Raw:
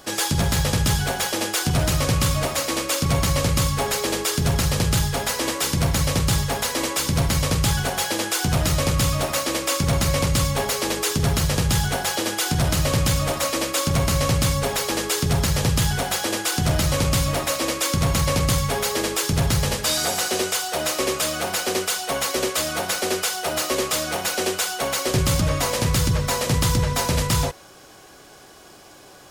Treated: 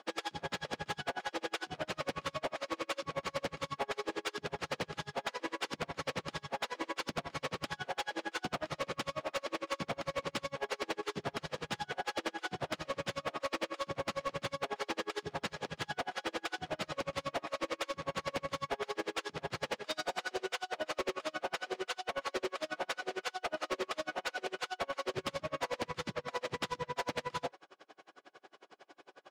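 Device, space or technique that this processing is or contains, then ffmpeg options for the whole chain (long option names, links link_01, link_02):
helicopter radio: -af "highpass=340,lowpass=3000,aeval=exprs='val(0)*pow(10,-36*(0.5-0.5*cos(2*PI*11*n/s))/20)':channel_layout=same,asoftclip=type=hard:threshold=-26dB,volume=-3dB"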